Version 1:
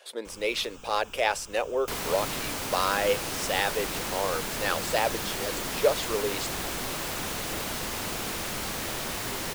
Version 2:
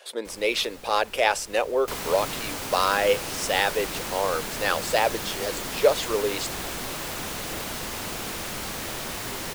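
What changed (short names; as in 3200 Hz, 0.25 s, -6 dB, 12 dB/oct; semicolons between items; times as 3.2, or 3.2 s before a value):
speech +4.0 dB; first sound: remove fixed phaser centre 2900 Hz, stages 8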